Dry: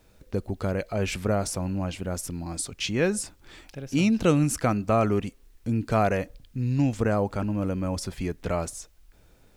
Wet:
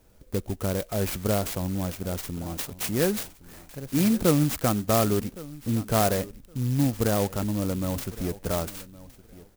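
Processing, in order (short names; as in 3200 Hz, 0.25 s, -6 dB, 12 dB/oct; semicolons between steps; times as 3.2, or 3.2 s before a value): feedback echo 1.115 s, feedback 18%, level -19 dB; clock jitter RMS 0.098 ms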